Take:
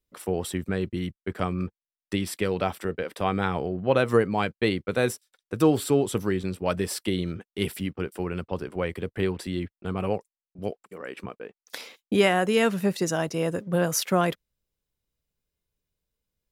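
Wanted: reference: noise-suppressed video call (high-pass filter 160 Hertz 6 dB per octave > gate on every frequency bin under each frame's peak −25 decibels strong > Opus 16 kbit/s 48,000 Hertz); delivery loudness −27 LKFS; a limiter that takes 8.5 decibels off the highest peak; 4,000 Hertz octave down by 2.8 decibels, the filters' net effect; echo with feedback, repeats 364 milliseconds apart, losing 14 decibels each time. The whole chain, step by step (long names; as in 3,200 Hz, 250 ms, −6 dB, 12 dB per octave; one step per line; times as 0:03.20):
parametric band 4,000 Hz −4 dB
brickwall limiter −16 dBFS
high-pass filter 160 Hz 6 dB per octave
repeating echo 364 ms, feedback 20%, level −14 dB
gate on every frequency bin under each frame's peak −25 dB strong
level +4 dB
Opus 16 kbit/s 48,000 Hz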